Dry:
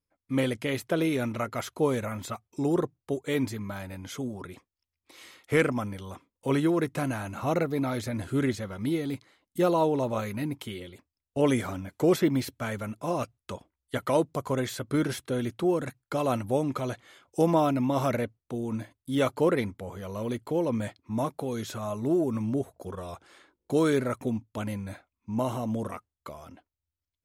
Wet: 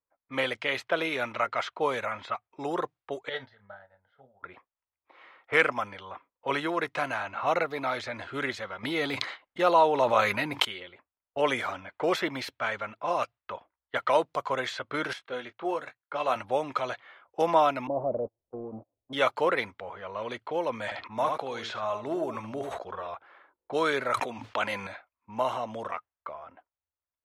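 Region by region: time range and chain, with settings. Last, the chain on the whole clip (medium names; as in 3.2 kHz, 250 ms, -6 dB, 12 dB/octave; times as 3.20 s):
3.29–4.43 s: static phaser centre 1.6 kHz, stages 8 + doubling 30 ms -8.5 dB + upward expansion 2.5:1, over -43 dBFS
8.83–10.65 s: expander -48 dBFS + level flattener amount 70%
15.13–16.36 s: bass shelf 230 Hz -4 dB + doubling 20 ms -9 dB + upward expansion, over -39 dBFS
17.87–19.13 s: jump at every zero crossing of -29 dBFS + inverse Chebyshev low-pass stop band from 1.6 kHz, stop band 50 dB + gate -29 dBFS, range -40 dB
20.84–23.08 s: delay 74 ms -10 dB + decay stretcher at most 61 dB/s
24.14–24.87 s: bass shelf 180 Hz -12 dB + level flattener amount 100%
whole clip: level-controlled noise filter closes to 1.1 kHz, open at -24.5 dBFS; three-band isolator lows -21 dB, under 590 Hz, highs -17 dB, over 4.5 kHz; trim +6.5 dB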